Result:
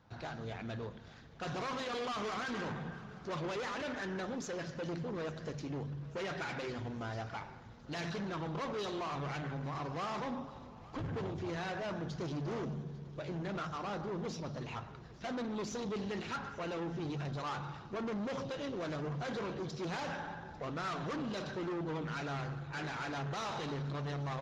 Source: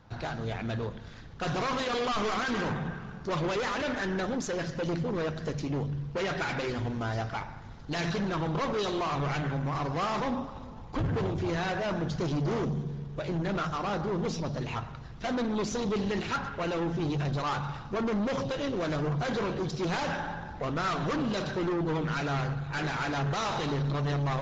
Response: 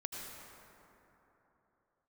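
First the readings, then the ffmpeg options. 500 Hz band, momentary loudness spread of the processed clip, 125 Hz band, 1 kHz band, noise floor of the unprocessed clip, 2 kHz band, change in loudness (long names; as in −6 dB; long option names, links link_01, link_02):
−8.0 dB, 6 LU, −9.0 dB, −8.0 dB, −43 dBFS, −8.0 dB, −8.5 dB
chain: -filter_complex "[0:a]highpass=frequency=85:poles=1,asoftclip=type=tanh:threshold=-23.5dB,asplit=2[link_01][link_02];[link_02]aecho=0:1:847|1694|2541|3388:0.0891|0.049|0.027|0.0148[link_03];[link_01][link_03]amix=inputs=2:normalize=0,volume=-7dB"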